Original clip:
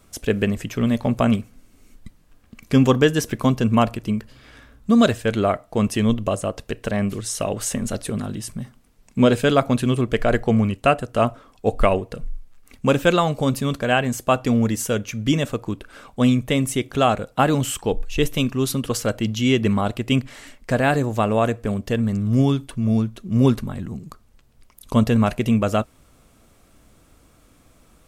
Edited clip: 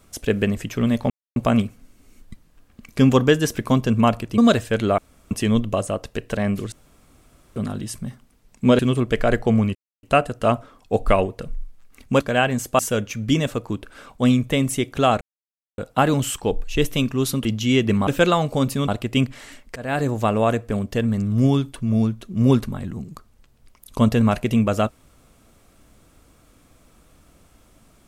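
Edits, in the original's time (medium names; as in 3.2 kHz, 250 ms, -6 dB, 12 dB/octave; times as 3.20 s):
1.10 s: insert silence 0.26 s
4.12–4.92 s: delete
5.52–5.85 s: room tone
7.26–8.10 s: room tone
9.33–9.80 s: delete
10.76 s: insert silence 0.28 s
12.93–13.74 s: move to 19.83 s
14.33–14.77 s: delete
17.19 s: insert silence 0.57 s
18.86–19.21 s: delete
20.71–21.04 s: fade in, from -23 dB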